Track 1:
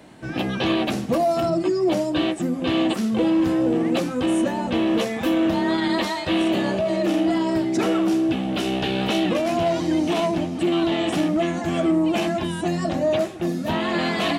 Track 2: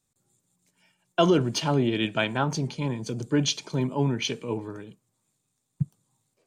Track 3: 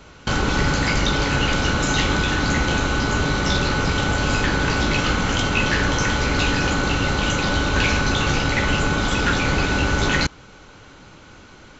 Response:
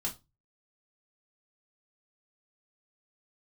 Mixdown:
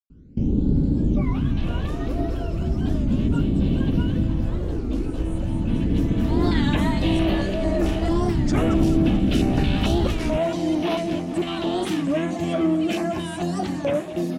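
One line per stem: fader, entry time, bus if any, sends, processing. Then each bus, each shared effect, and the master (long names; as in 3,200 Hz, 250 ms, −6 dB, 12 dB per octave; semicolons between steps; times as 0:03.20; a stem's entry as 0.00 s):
−10.0 dB, 0.75 s, no send, echo send −13 dB, automatic gain control gain up to 10.5 dB; notch on a step sequencer 4.5 Hz 400–7,600 Hz; automatic ducking −20 dB, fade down 0.25 s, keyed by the second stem
−12.5 dB, 0.00 s, no send, no echo send, frequency axis turned over on the octave scale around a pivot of 640 Hz; high-shelf EQ 5,100 Hz −9.5 dB; dead-zone distortion −46.5 dBFS
−0.5 dB, 0.10 s, no send, no echo send, drawn EQ curve 130 Hz 0 dB, 250 Hz +6 dB, 1,200 Hz −29 dB; all-pass phaser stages 12, 0.36 Hz, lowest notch 180–2,100 Hz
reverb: not used
echo: repeating echo 218 ms, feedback 58%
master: wow of a warped record 33 1/3 rpm, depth 160 cents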